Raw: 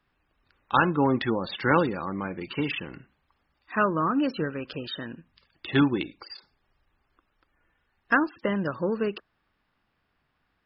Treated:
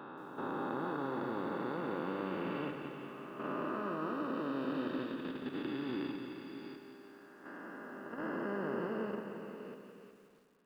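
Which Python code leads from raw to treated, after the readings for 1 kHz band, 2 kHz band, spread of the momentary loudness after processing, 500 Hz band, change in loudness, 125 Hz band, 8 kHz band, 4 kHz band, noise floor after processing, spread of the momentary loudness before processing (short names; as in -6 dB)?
-12.0 dB, -15.0 dB, 13 LU, -9.0 dB, -12.5 dB, -14.5 dB, n/a, -15.0 dB, -59 dBFS, 15 LU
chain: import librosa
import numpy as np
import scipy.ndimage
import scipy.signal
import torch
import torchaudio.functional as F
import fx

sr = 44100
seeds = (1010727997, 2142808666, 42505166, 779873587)

y = fx.spec_blur(x, sr, span_ms=1280.0)
y = scipy.signal.sosfilt(scipy.signal.butter(2, 220.0, 'highpass', fs=sr, output='sos'), y)
y = fx.dynamic_eq(y, sr, hz=2200.0, q=1.5, threshold_db=-51.0, ratio=4.0, max_db=-4)
y = fx.level_steps(y, sr, step_db=10)
y = fx.echo_wet_lowpass(y, sr, ms=95, feedback_pct=79, hz=3100.0, wet_db=-14)
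y = fx.echo_crushed(y, sr, ms=175, feedback_pct=55, bits=11, wet_db=-9.0)
y = y * 10.0 ** (1.5 / 20.0)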